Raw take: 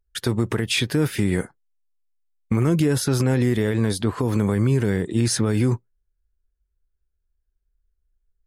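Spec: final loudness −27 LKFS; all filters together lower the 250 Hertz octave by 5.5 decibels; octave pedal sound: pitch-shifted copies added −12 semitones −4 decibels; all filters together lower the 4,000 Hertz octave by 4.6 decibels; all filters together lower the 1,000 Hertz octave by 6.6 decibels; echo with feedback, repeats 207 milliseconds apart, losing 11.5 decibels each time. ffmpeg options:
ffmpeg -i in.wav -filter_complex "[0:a]equalizer=frequency=250:width_type=o:gain=-7,equalizer=frequency=1000:width_type=o:gain=-8,equalizer=frequency=4000:width_type=o:gain=-5.5,aecho=1:1:207|414|621:0.266|0.0718|0.0194,asplit=2[link_01][link_02];[link_02]asetrate=22050,aresample=44100,atempo=2,volume=-4dB[link_03];[link_01][link_03]amix=inputs=2:normalize=0,volume=-3.5dB" out.wav

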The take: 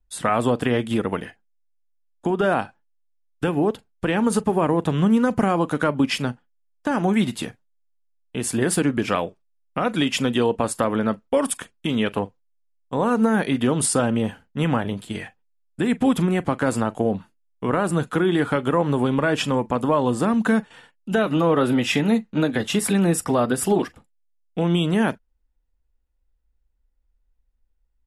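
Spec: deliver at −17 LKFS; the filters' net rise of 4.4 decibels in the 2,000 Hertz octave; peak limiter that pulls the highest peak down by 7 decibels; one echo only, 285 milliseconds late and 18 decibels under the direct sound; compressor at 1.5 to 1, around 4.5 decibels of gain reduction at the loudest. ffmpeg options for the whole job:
ffmpeg -i in.wav -af "equalizer=frequency=2000:width_type=o:gain=6,acompressor=threshold=-27dB:ratio=1.5,alimiter=limit=-15.5dB:level=0:latency=1,aecho=1:1:285:0.126,volume=10dB" out.wav

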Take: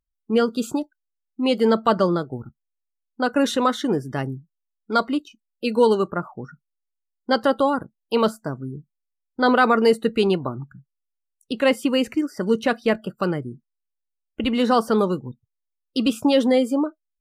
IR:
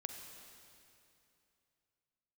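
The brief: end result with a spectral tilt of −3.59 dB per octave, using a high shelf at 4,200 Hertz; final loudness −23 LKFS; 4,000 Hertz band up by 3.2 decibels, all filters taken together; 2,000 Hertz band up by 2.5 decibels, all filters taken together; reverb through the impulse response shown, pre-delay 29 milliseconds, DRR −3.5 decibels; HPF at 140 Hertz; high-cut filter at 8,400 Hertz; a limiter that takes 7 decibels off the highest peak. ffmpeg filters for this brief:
-filter_complex "[0:a]highpass=140,lowpass=8400,equalizer=frequency=2000:width_type=o:gain=3.5,equalizer=frequency=4000:width_type=o:gain=6,highshelf=frequency=4200:gain=-5.5,alimiter=limit=-11dB:level=0:latency=1,asplit=2[link_01][link_02];[1:a]atrim=start_sample=2205,adelay=29[link_03];[link_02][link_03]afir=irnorm=-1:irlink=0,volume=5.5dB[link_04];[link_01][link_04]amix=inputs=2:normalize=0,volume=-4dB"

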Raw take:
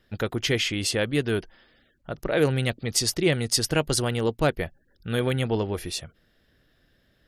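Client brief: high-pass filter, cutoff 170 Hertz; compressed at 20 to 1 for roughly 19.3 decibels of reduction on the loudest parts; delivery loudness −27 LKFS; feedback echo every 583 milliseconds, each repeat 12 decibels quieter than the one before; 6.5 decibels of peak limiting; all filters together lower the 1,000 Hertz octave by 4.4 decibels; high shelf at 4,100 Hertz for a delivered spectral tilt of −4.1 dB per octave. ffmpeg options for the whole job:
ffmpeg -i in.wav -af "highpass=170,equalizer=frequency=1000:width_type=o:gain=-6,highshelf=frequency=4100:gain=-6,acompressor=threshold=-37dB:ratio=20,alimiter=level_in=7.5dB:limit=-24dB:level=0:latency=1,volume=-7.5dB,aecho=1:1:583|1166|1749:0.251|0.0628|0.0157,volume=16.5dB" out.wav

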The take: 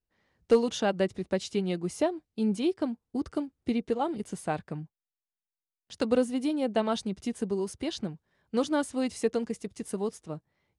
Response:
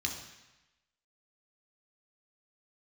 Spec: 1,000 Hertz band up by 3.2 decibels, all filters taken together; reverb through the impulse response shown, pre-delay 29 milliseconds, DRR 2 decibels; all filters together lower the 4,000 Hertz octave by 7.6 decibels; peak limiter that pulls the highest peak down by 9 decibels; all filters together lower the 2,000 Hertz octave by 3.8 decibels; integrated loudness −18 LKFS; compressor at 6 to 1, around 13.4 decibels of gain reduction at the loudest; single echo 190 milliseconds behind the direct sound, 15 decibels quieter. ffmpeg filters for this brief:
-filter_complex "[0:a]equalizer=frequency=1000:width_type=o:gain=6,equalizer=frequency=2000:width_type=o:gain=-6.5,equalizer=frequency=4000:width_type=o:gain=-8,acompressor=threshold=-30dB:ratio=6,alimiter=level_in=4dB:limit=-24dB:level=0:latency=1,volume=-4dB,aecho=1:1:190:0.178,asplit=2[link_01][link_02];[1:a]atrim=start_sample=2205,adelay=29[link_03];[link_02][link_03]afir=irnorm=-1:irlink=0,volume=-5.5dB[link_04];[link_01][link_04]amix=inputs=2:normalize=0,volume=18.5dB"

